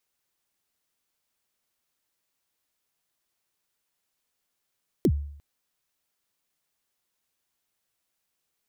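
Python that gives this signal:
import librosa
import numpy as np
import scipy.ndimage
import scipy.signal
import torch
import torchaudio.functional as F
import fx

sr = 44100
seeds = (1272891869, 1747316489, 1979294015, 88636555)

y = fx.drum_kick(sr, seeds[0], length_s=0.35, level_db=-15.0, start_hz=430.0, end_hz=72.0, sweep_ms=62.0, decay_s=0.65, click=True)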